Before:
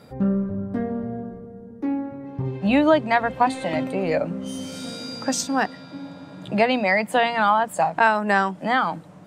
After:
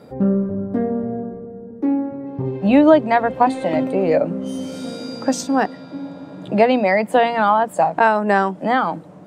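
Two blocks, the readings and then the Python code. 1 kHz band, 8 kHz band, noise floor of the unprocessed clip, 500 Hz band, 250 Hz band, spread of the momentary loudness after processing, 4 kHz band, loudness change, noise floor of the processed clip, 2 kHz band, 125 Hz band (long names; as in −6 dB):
+3.5 dB, −2.5 dB, −43 dBFS, +6.0 dB, +5.5 dB, 15 LU, −2.0 dB, +4.0 dB, −40 dBFS, −0.5 dB, +3.0 dB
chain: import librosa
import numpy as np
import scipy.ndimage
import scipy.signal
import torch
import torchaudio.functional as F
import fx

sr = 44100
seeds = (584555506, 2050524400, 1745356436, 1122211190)

y = fx.peak_eq(x, sr, hz=400.0, db=10.0, octaves=2.6)
y = y * 10.0 ** (-2.5 / 20.0)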